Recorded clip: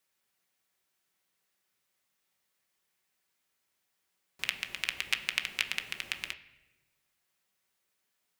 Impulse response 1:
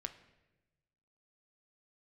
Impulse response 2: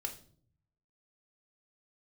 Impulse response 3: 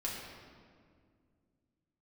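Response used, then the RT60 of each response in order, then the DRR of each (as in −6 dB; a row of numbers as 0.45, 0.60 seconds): 1; 1.0, 0.55, 2.1 seconds; 5.5, 4.0, −5.0 decibels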